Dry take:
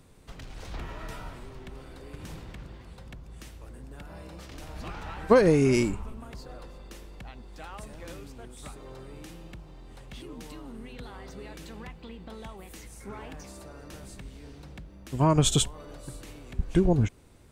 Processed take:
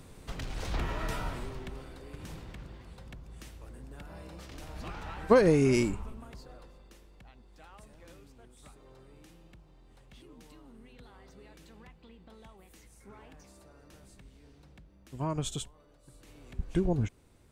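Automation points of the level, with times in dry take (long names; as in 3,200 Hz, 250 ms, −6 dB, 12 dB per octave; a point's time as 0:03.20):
0:01.41 +5 dB
0:02.00 −2.5 dB
0:06.04 −2.5 dB
0:06.99 −11 dB
0:15.35 −11 dB
0:15.98 −18.5 dB
0:16.44 −6 dB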